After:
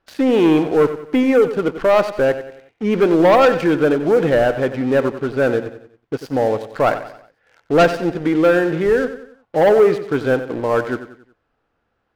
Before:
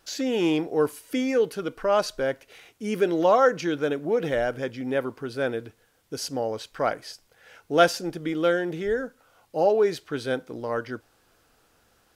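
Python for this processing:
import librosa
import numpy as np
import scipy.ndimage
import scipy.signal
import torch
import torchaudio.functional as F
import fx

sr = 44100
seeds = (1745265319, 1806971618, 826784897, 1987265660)

y = scipy.signal.sosfilt(scipy.signal.butter(2, 2200.0, 'lowpass', fs=sr, output='sos'), x)
y = fx.leveller(y, sr, passes=3)
y = fx.echo_feedback(y, sr, ms=92, feedback_pct=43, wet_db=-12)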